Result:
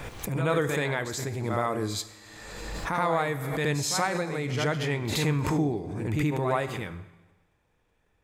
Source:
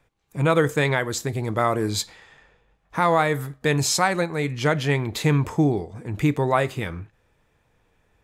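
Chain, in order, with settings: reverse echo 76 ms -8.5 dB; Schroeder reverb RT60 1.2 s, combs from 32 ms, DRR 13.5 dB; backwards sustainer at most 32 dB/s; gain -7.5 dB

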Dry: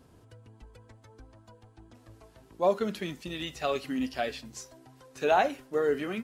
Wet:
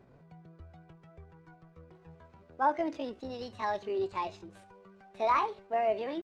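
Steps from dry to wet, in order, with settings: CVSD 64 kbps; tape spacing loss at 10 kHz 41 dB; pitch shift +7 st

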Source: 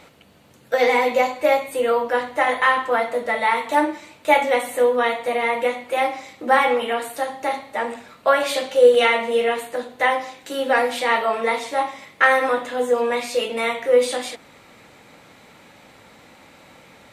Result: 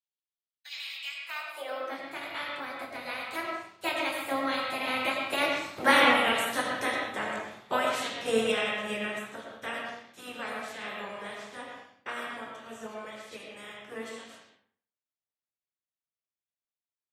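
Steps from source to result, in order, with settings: spectral limiter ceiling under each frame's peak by 19 dB; Doppler pass-by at 6.17, 36 m/s, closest 27 m; expander -49 dBFS; high-pass sweep 3200 Hz -> 96 Hz, 1.01–2.29; on a send: reverb RT60 0.55 s, pre-delay 60 ms, DRR 1 dB; on the sum: gain -5 dB

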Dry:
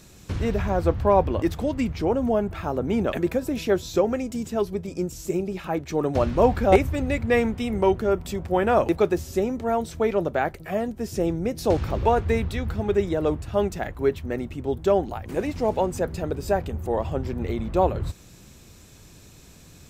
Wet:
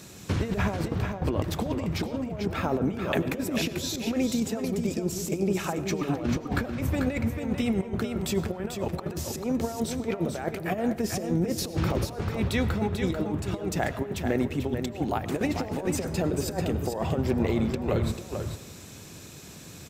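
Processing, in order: HPF 99 Hz 12 dB/oct; negative-ratio compressor -28 dBFS, ratio -0.5; echo 0.441 s -6.5 dB; on a send at -15 dB: reverb RT60 0.95 s, pre-delay 60 ms

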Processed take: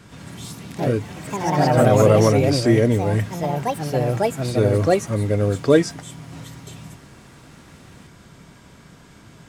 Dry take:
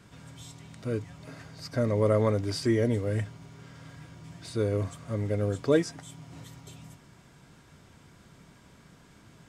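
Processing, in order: echoes that change speed 92 ms, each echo +3 st, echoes 3; gain +8.5 dB

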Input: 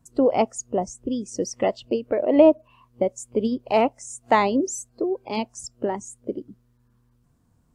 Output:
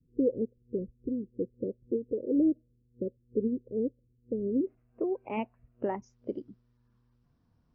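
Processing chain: steep low-pass 510 Hz 96 dB/oct, from 4.65 s 2800 Hz, from 6.02 s 5800 Hz; gain -6 dB

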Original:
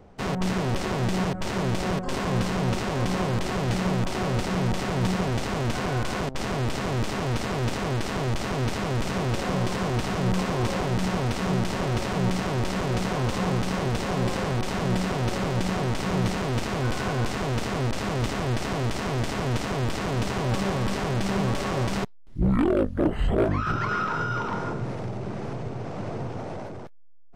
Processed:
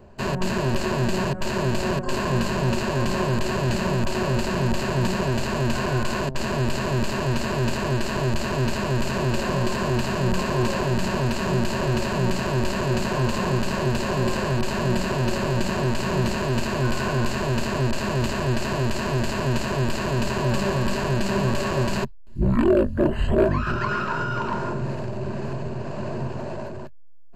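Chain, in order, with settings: ripple EQ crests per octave 1.4, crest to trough 10 dB; gain +1.5 dB

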